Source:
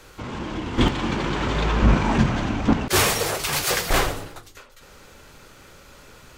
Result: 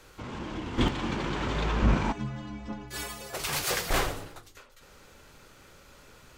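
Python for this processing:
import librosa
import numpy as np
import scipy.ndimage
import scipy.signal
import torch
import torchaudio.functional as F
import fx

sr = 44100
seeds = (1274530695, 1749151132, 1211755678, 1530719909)

y = fx.stiff_resonator(x, sr, f0_hz=62.0, decay_s=0.71, stiffness=0.03, at=(2.11, 3.33), fade=0.02)
y = y * 10.0 ** (-6.5 / 20.0)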